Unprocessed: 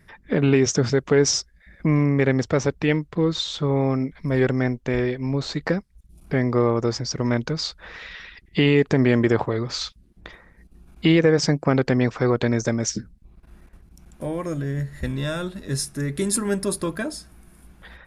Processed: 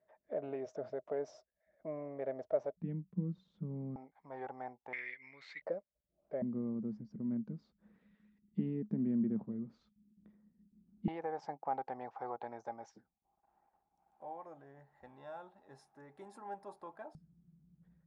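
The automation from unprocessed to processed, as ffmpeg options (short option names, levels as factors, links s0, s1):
-af "asetnsamples=n=441:p=0,asendcmd='2.77 bandpass f 190;3.96 bandpass f 820;4.93 bandpass f 2100;5.62 bandpass f 590;6.42 bandpass f 210;11.08 bandpass f 810;17.15 bandpass f 160',bandpass=f=630:t=q:w=13:csg=0"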